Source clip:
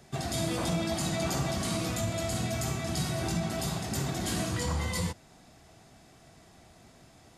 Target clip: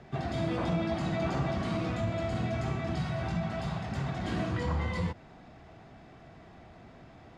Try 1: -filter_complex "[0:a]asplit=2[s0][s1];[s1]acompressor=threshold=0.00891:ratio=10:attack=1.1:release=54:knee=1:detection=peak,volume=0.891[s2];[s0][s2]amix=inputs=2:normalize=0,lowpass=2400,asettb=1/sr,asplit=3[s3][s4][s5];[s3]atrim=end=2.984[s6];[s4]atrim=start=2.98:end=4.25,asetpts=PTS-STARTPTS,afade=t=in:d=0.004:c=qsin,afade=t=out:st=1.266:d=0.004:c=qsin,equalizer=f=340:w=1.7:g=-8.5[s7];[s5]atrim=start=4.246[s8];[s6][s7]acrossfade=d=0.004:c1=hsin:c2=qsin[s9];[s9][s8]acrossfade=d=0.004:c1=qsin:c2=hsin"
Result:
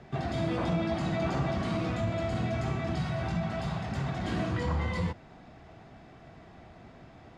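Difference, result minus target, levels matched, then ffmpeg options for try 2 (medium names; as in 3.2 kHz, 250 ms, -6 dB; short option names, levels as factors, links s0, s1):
compression: peak gain reduction -10.5 dB
-filter_complex "[0:a]asplit=2[s0][s1];[s1]acompressor=threshold=0.00237:ratio=10:attack=1.1:release=54:knee=1:detection=peak,volume=0.891[s2];[s0][s2]amix=inputs=2:normalize=0,lowpass=2400,asettb=1/sr,asplit=3[s3][s4][s5];[s3]atrim=end=2.984[s6];[s4]atrim=start=2.98:end=4.25,asetpts=PTS-STARTPTS,afade=t=in:d=0.004:c=qsin,afade=t=out:st=1.266:d=0.004:c=qsin,equalizer=f=340:w=1.7:g=-8.5[s7];[s5]atrim=start=4.246[s8];[s6][s7]acrossfade=d=0.004:c1=hsin:c2=qsin[s9];[s9][s8]acrossfade=d=0.004:c1=qsin:c2=hsin"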